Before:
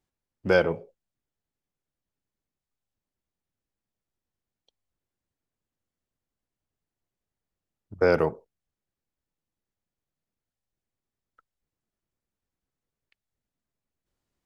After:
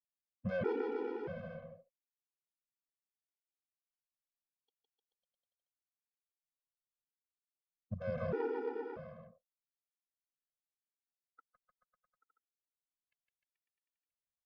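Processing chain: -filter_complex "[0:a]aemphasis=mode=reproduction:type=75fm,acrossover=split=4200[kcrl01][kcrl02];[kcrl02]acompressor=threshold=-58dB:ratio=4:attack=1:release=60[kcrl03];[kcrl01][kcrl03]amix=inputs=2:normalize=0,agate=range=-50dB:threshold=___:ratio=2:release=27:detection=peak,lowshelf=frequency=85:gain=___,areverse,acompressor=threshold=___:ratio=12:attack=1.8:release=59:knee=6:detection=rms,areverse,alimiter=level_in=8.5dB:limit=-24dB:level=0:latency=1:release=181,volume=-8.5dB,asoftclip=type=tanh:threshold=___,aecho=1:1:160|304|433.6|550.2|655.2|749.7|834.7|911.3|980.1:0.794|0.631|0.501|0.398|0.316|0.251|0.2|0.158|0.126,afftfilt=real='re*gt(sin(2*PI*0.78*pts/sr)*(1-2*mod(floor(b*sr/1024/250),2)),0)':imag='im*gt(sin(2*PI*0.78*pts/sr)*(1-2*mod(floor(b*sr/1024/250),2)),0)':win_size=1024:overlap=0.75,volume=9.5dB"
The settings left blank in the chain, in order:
-49dB, -10.5, -28dB, -37dB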